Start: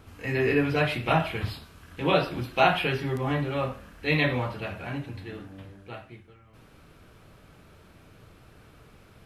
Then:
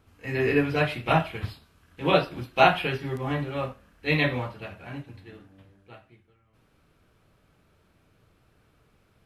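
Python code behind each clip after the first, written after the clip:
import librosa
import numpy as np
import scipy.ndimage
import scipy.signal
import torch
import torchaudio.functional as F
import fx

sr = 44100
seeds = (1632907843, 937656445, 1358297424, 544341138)

y = fx.upward_expand(x, sr, threshold_db=-44.0, expansion=1.5)
y = y * 10.0 ** (3.5 / 20.0)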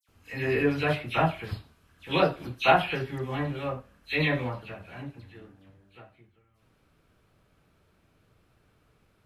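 y = fx.dispersion(x, sr, late='lows', ms=86.0, hz=2500.0)
y = y * 10.0 ** (-2.0 / 20.0)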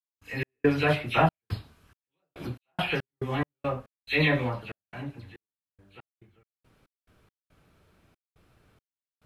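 y = fx.step_gate(x, sr, bpm=70, pattern='.x.xxx.xx..x.x.x', floor_db=-60.0, edge_ms=4.5)
y = y * 10.0 ** (2.5 / 20.0)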